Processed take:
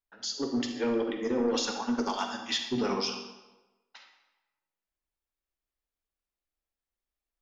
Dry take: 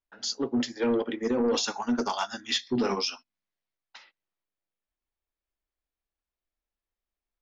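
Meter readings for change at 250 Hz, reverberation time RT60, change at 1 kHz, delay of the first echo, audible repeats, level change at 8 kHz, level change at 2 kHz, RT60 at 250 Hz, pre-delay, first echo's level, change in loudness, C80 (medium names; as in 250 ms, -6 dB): -2.0 dB, 1.1 s, -2.0 dB, no echo, no echo, no reading, -2.0 dB, 0.95 s, 37 ms, no echo, -2.0 dB, 8.0 dB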